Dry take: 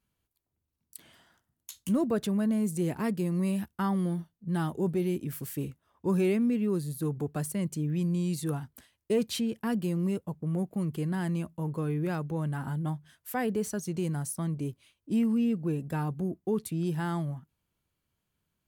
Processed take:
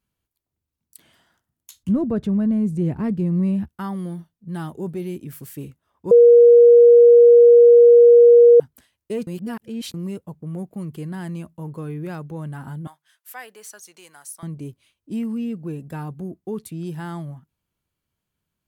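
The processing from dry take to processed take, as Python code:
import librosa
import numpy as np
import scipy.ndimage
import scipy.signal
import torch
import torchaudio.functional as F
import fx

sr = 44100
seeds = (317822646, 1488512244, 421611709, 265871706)

y = fx.riaa(x, sr, side='playback', at=(1.83, 3.69))
y = fx.highpass(y, sr, hz=1000.0, slope=12, at=(12.87, 14.43))
y = fx.edit(y, sr, fx.bleep(start_s=6.11, length_s=2.49, hz=475.0, db=-6.0),
    fx.reverse_span(start_s=9.27, length_s=0.67), tone=tone)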